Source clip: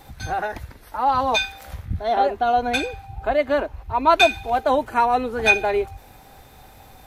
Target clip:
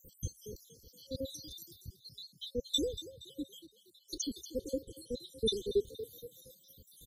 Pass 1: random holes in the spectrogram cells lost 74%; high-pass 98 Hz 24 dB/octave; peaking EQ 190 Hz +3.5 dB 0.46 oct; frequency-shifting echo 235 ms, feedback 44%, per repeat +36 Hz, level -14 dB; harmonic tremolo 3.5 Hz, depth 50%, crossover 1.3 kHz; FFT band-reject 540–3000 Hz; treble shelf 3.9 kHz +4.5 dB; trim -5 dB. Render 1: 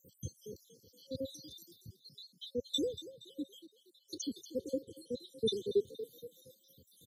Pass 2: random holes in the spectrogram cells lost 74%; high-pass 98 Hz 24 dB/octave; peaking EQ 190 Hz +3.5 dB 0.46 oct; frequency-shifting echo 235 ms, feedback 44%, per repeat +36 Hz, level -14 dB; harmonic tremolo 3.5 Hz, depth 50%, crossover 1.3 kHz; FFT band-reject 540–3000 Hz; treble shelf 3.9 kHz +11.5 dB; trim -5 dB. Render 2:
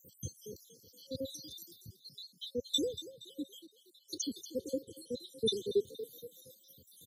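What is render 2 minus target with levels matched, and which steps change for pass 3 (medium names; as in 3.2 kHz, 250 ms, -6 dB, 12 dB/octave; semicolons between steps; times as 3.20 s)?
125 Hz band -3.0 dB
remove: high-pass 98 Hz 24 dB/octave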